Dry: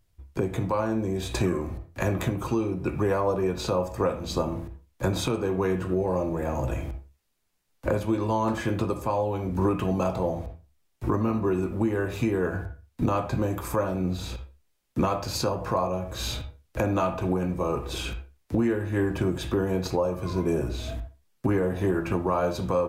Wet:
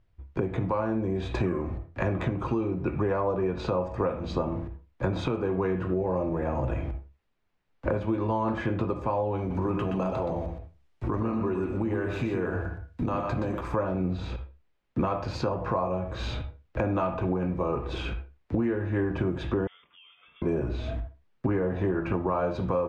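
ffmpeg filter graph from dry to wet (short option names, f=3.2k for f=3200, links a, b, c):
-filter_complex "[0:a]asettb=1/sr,asplit=3[a][b][c];[a]atrim=end=9.384[d];[b]atrim=start=9.38:end=13.61,asetpts=PTS-STARTPTS,afade=t=in:d=0.004:c=qsin,afade=t=out:st=4.226:d=0.004:c=qsin,aemphasis=mode=production:type=50kf,acompressor=threshold=-27dB:ratio=2:attack=3.2:release=140:knee=1:detection=peak,aecho=1:1:122:0.531,atrim=end_sample=186543[e];[c]atrim=start=13.606[f];[d][e]acrossfade=d=0.004:c1=hsin:c2=qsin[g];[g][f]acrossfade=d=0.004:c1=qsin:c2=hsin,asettb=1/sr,asplit=3[h][i][j];[h]atrim=end=19.674[k];[i]atrim=start=19.67:end=20.42,asetpts=PTS-STARTPTS,afade=t=in:d=0.004:c=qsin,afade=t=out:st=0.746:d=0.004:c=qsin,aderivative,acompressor=threshold=-46dB:ratio=12:attack=3.2:release=140:knee=1:detection=peak,lowpass=f=3.1k:t=q:w=0.5098,lowpass=f=3.1k:t=q:w=0.6013,lowpass=f=3.1k:t=q:w=0.9,lowpass=f=3.1k:t=q:w=2.563,afreqshift=-3700[l];[j]atrim=start=20.416[m];[k][l]acrossfade=d=0.004:c1=hsin:c2=qsin[n];[n][m]acrossfade=d=0.004:c1=qsin:c2=hsin,lowpass=2.5k,acompressor=threshold=-27dB:ratio=2,volume=1.5dB"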